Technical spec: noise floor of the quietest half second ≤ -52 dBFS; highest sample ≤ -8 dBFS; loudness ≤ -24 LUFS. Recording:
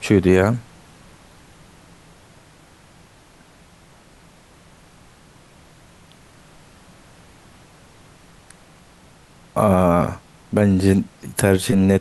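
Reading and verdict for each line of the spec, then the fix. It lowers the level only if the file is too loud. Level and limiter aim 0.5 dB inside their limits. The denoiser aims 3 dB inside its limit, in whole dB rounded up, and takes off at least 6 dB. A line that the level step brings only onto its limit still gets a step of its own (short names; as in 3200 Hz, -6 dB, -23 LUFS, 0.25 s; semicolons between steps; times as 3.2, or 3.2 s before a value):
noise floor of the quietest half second -50 dBFS: fail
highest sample -3.0 dBFS: fail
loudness -18.0 LUFS: fail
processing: gain -6.5 dB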